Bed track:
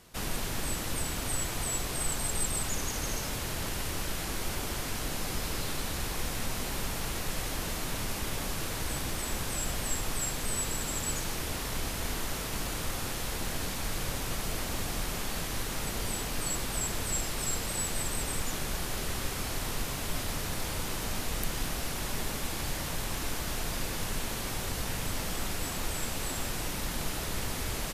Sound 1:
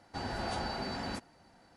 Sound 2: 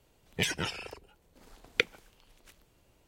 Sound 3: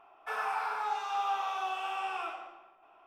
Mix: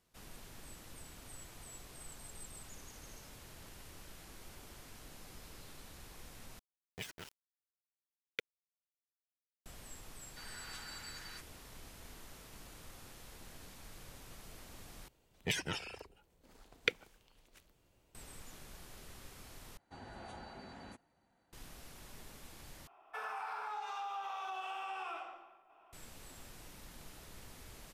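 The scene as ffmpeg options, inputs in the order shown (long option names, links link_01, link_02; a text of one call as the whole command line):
ffmpeg -i bed.wav -i cue0.wav -i cue1.wav -i cue2.wav -filter_complex "[2:a]asplit=2[link_01][link_02];[1:a]asplit=2[link_03][link_04];[0:a]volume=-19.5dB[link_05];[link_01]aeval=exprs='val(0)*gte(abs(val(0)),0.0335)':channel_layout=same[link_06];[link_03]highpass=frequency=1300:width=0.5412,highpass=frequency=1300:width=1.3066[link_07];[link_04]equalizer=frequency=5100:width=6.1:gain=-13[link_08];[3:a]acompressor=threshold=-34dB:ratio=6:attack=3.2:release=140:knee=1:detection=peak[link_09];[link_05]asplit=5[link_10][link_11][link_12][link_13][link_14];[link_10]atrim=end=6.594[link_15];[link_06]atrim=end=3.07,asetpts=PTS-STARTPTS,volume=-15dB[link_16];[link_11]atrim=start=9.656:end=15.084[link_17];[link_02]atrim=end=3.07,asetpts=PTS-STARTPTS,volume=-5.5dB[link_18];[link_12]atrim=start=18.146:end=19.774[link_19];[link_08]atrim=end=1.76,asetpts=PTS-STARTPTS,volume=-13.5dB[link_20];[link_13]atrim=start=21.526:end=22.874[link_21];[link_09]atrim=end=3.06,asetpts=PTS-STARTPTS,volume=-4dB[link_22];[link_14]atrim=start=25.926[link_23];[link_07]atrim=end=1.76,asetpts=PTS-STARTPTS,volume=-6.5dB,afade=type=in:duration=0.004:curve=hsin,afade=type=out:start_time=1.756:duration=0.004:curve=hsin,adelay=10220[link_24];[link_15][link_16]acrossfade=duration=0.004:curve1=hsin:curve2=hsin[link_25];[link_25][link_17]acrossfade=duration=0.004:curve1=hsin:curve2=hsin[link_26];[link_26][link_18]acrossfade=duration=0.004:curve1=hsin:curve2=hsin[link_27];[link_27][link_19]acrossfade=duration=0.004:curve1=hsin:curve2=hsin[link_28];[link_28][link_20]acrossfade=duration=0.004:curve1=hsin:curve2=hsin[link_29];[link_29][link_21]acrossfade=duration=0.004:curve1=hsin:curve2=hsin[link_30];[link_30][link_22]acrossfade=duration=0.004:curve1=hsin:curve2=hsin[link_31];[link_31][link_23]acrossfade=duration=0.004:curve1=hsin:curve2=hsin[link_32];[link_32][link_24]amix=inputs=2:normalize=0" out.wav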